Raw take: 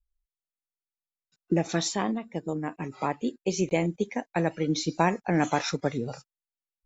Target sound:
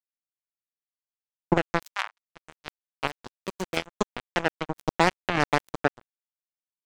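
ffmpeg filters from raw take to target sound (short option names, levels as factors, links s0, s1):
-filter_complex "[0:a]asplit=2[s0][s1];[s1]adelay=63,lowpass=f=4600:p=1,volume=0.1,asplit=2[s2][s3];[s3]adelay=63,lowpass=f=4600:p=1,volume=0.35,asplit=2[s4][s5];[s5]adelay=63,lowpass=f=4600:p=1,volume=0.35[s6];[s0][s2][s4][s6]amix=inputs=4:normalize=0,acrusher=bits=2:mix=0:aa=0.5,asettb=1/sr,asplit=3[s7][s8][s9];[s7]atrim=end=3.074[s10];[s8]atrim=start=3.07:end=3.77,asetpts=PTS-STARTPTS,afade=t=in:d=0.004:c=qsin,afade=t=out:st=0.696:d=0.004:c=qsin,volume=28.2,asoftclip=hard,volume=0.0355[s11];[s9]atrim=start=3.766[s12];[s10][s11]acrossfade=d=0.004:c1=hsin:c2=qsin[s13];[s13][s12]acrossfade=d=0.004:c1=qsin:c2=hsin,alimiter=limit=0.188:level=0:latency=1:release=206,asettb=1/sr,asplit=3[s14][s15][s16];[s14]atrim=end=1.834[s17];[s15]atrim=start=1.83:end=2.34,asetpts=PTS-STARTPTS,afade=t=in:d=0.004:c=qsin,afade=t=out:st=0.506:d=0.004:c=qsin,highpass=f=850:w=0.5412,highpass=f=850:w=1.3066[s18];[s16]atrim=start=2.336[s19];[s17][s18]acrossfade=d=0.004:c1=hsin:c2=qsin[s20];[s20][s19]acrossfade=d=0.004:c1=qsin:c2=hsin,volume=2.37"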